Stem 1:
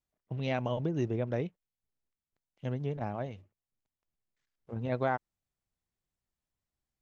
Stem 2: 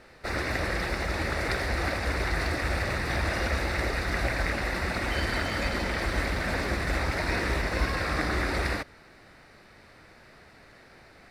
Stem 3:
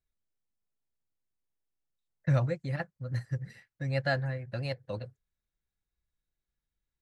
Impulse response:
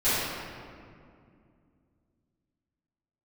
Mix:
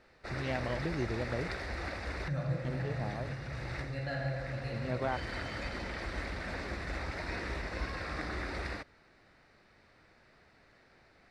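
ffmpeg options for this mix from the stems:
-filter_complex "[0:a]volume=-4dB[link_01];[1:a]lowpass=7000,volume=-10dB[link_02];[2:a]volume=-14.5dB,asplit=3[link_03][link_04][link_05];[link_04]volume=-8.5dB[link_06];[link_05]apad=whole_len=498760[link_07];[link_02][link_07]sidechaincompress=threshold=-53dB:ratio=4:attack=40:release=620[link_08];[3:a]atrim=start_sample=2205[link_09];[link_06][link_09]afir=irnorm=-1:irlink=0[link_10];[link_01][link_08][link_03][link_10]amix=inputs=4:normalize=0"

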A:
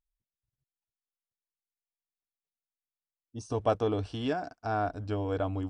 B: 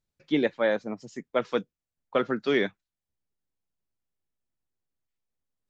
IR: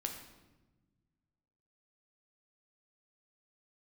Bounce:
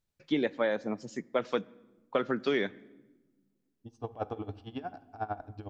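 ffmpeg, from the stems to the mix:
-filter_complex "[0:a]lowpass=3600,equalizer=frequency=810:width=7.9:gain=10.5,aeval=exprs='val(0)*pow(10,-22*(0.5-0.5*cos(2*PI*11*n/s))/20)':channel_layout=same,adelay=500,volume=-6dB,asplit=2[link_01][link_02];[link_02]volume=-8.5dB[link_03];[1:a]volume=0dB,asplit=2[link_04][link_05];[link_05]volume=-18.5dB[link_06];[2:a]atrim=start_sample=2205[link_07];[link_03][link_06]amix=inputs=2:normalize=0[link_08];[link_08][link_07]afir=irnorm=-1:irlink=0[link_09];[link_01][link_04][link_09]amix=inputs=3:normalize=0,acompressor=threshold=-25dB:ratio=4"

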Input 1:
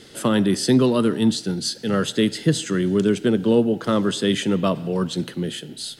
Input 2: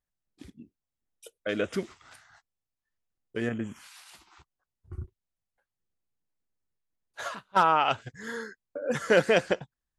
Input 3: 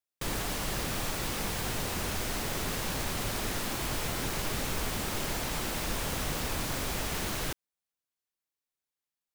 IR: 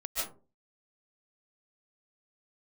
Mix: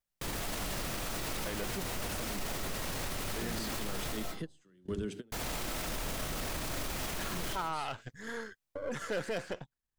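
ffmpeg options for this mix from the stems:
-filter_complex "[0:a]bandreject=frequency=50:width_type=h:width=6,bandreject=frequency=100:width_type=h:width=6,bandreject=frequency=150:width_type=h:width=6,bandreject=frequency=200:width_type=h:width=6,bandreject=frequency=250:width_type=h:width=6,bandreject=frequency=300:width_type=h:width=6,bandreject=frequency=350:width_type=h:width=6,bandreject=frequency=400:width_type=h:width=6,alimiter=limit=-15.5dB:level=0:latency=1:release=133,adelay=1950,volume=-11.5dB[link_01];[1:a]aeval=exprs='if(lt(val(0),0),0.447*val(0),val(0))':channel_layout=same,volume=-1.5dB,asplit=2[link_02][link_03];[2:a]volume=-3.5dB,asplit=3[link_04][link_05][link_06];[link_04]atrim=end=4.17,asetpts=PTS-STARTPTS,afade=type=out:start_time=4.166:duration=0.004:curve=hsin[link_07];[link_05]atrim=start=4.17:end=5.32,asetpts=PTS-STARTPTS,volume=0[link_08];[link_06]atrim=start=5.32,asetpts=PTS-STARTPTS,afade=type=in:duration=0.004:curve=hsin[link_09];[link_07][link_08][link_09]concat=n=3:v=0:a=1,asplit=2[link_10][link_11];[link_11]volume=-6dB[link_12];[link_03]apad=whole_len=350322[link_13];[link_01][link_13]sidechaingate=range=-28dB:threshold=-60dB:ratio=16:detection=peak[link_14];[3:a]atrim=start_sample=2205[link_15];[link_12][link_15]afir=irnorm=-1:irlink=0[link_16];[link_14][link_02][link_10][link_16]amix=inputs=4:normalize=0,aeval=exprs='clip(val(0),-1,0.106)':channel_layout=same,alimiter=level_in=3.5dB:limit=-24dB:level=0:latency=1:release=27,volume=-3.5dB"

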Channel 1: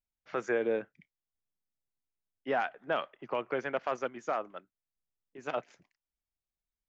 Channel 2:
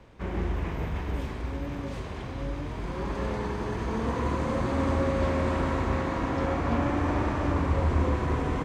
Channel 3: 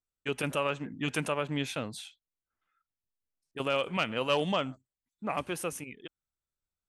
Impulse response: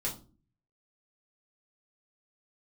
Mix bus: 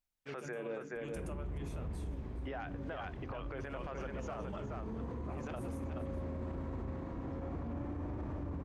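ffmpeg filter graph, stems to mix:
-filter_complex "[0:a]bandreject=frequency=50:width_type=h:width=6,bandreject=frequency=100:width_type=h:width=6,bandreject=frequency=150:width_type=h:width=6,bandreject=frequency=200:width_type=h:width=6,bandreject=frequency=250:width_type=h:width=6,bandreject=frequency=300:width_type=h:width=6,bandreject=frequency=350:width_type=h:width=6,bandreject=frequency=400:width_type=h:width=6,bandreject=frequency=450:width_type=h:width=6,volume=2.5dB,asplit=2[link_01][link_02];[link_02]volume=-13.5dB[link_03];[1:a]tiltshelf=frequency=750:gain=7.5,adelay=950,volume=-14dB[link_04];[2:a]equalizer=frequency=3300:width_type=o:width=1.4:gain=-10,volume=-15dB,asplit=3[link_05][link_06][link_07];[link_06]volume=-6.5dB[link_08];[link_07]volume=-15.5dB[link_09];[link_01][link_05]amix=inputs=2:normalize=0,acompressor=threshold=-37dB:ratio=2.5,volume=0dB[link_10];[3:a]atrim=start_sample=2205[link_11];[link_08][link_11]afir=irnorm=-1:irlink=0[link_12];[link_03][link_09]amix=inputs=2:normalize=0,aecho=0:1:424:1[link_13];[link_04][link_10][link_12][link_13]amix=inputs=4:normalize=0,alimiter=level_in=9dB:limit=-24dB:level=0:latency=1:release=57,volume=-9dB"

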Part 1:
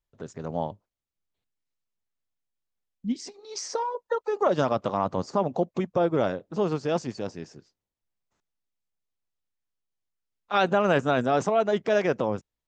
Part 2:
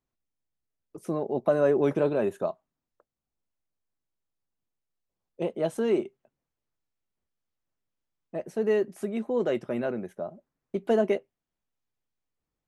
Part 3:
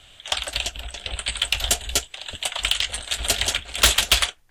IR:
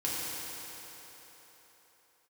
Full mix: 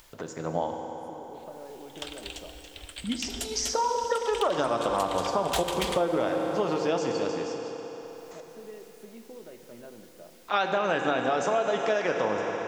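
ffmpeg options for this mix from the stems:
-filter_complex "[0:a]lowshelf=frequency=310:gain=-12,acompressor=mode=upward:threshold=-38dB:ratio=2.5,volume=2dB,asplit=2[link_01][link_02];[link_02]volume=-7.5dB[link_03];[1:a]acompressor=threshold=-28dB:ratio=6,volume=-16.5dB,asplit=2[link_04][link_05];[link_05]volume=-11dB[link_06];[2:a]adelay=1700,volume=-16.5dB,asplit=2[link_07][link_08];[link_08]volume=-13dB[link_09];[3:a]atrim=start_sample=2205[link_10];[link_03][link_06][link_09]amix=inputs=3:normalize=0[link_11];[link_11][link_10]afir=irnorm=-1:irlink=0[link_12];[link_01][link_04][link_07][link_12]amix=inputs=4:normalize=0,acompressor=threshold=-22dB:ratio=6"

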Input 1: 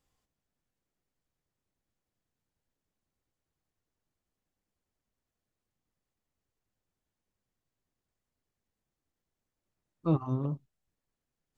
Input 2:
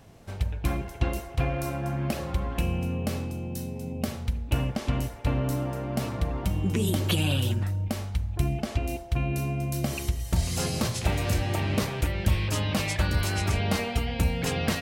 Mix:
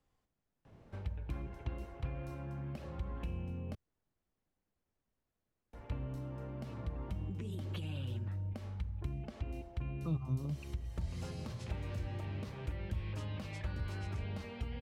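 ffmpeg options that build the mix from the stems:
ffmpeg -i stem1.wav -i stem2.wav -filter_complex "[0:a]volume=1.5dB[link_01];[1:a]highshelf=frequency=6200:gain=-10,bandreject=frequency=710:width=12,acompressor=threshold=-32dB:ratio=2,adelay=650,volume=-6.5dB,asplit=3[link_02][link_03][link_04];[link_02]atrim=end=3.75,asetpts=PTS-STARTPTS,afade=type=out:start_time=3.746:duration=0.004:curve=hsin[link_05];[link_03]atrim=start=3.75:end=5.73,asetpts=PTS-STARTPTS,volume=0[link_06];[link_04]atrim=start=5.73,asetpts=PTS-STARTPTS,afade=type=in:duration=0.004:curve=hsin[link_07];[link_05][link_06][link_07]concat=n=3:v=0:a=1[link_08];[link_01][link_08]amix=inputs=2:normalize=0,acrossover=split=130|3000[link_09][link_10][link_11];[link_10]acompressor=threshold=-44dB:ratio=6[link_12];[link_09][link_12][link_11]amix=inputs=3:normalize=0,highshelf=frequency=3300:gain=-11" out.wav

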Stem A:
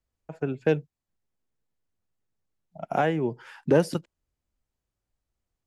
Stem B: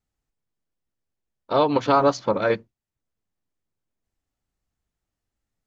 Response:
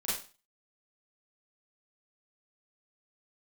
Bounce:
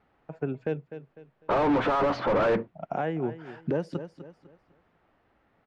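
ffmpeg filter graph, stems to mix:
-filter_complex "[0:a]volume=-1.5dB,asplit=2[link_01][link_02];[link_02]volume=-16dB[link_03];[1:a]lowpass=3300,asplit=2[link_04][link_05];[link_05]highpass=frequency=720:poles=1,volume=39dB,asoftclip=type=tanh:threshold=-5.5dB[link_06];[link_04][link_06]amix=inputs=2:normalize=0,lowpass=frequency=1300:poles=1,volume=-6dB,volume=-5dB[link_07];[link_03]aecho=0:1:250|500|750|1000:1|0.29|0.0841|0.0244[link_08];[link_01][link_07][link_08]amix=inputs=3:normalize=0,lowpass=8300,aemphasis=mode=reproduction:type=75fm,alimiter=limit=-18.5dB:level=0:latency=1:release=368"

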